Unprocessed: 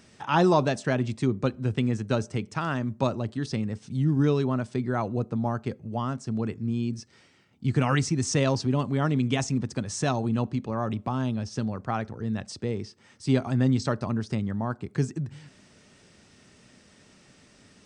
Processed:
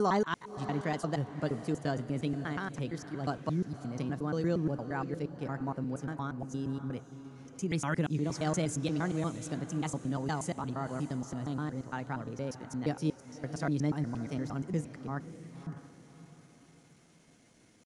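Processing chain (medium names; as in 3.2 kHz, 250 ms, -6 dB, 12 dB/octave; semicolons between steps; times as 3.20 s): slices played last to first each 117 ms, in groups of 5; pitch shift +2.5 st; peaking EQ 3.1 kHz -3 dB 0.82 oct; on a send: echo that smears into a reverb 582 ms, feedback 41%, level -12.5 dB; on the sum: trim -7.5 dB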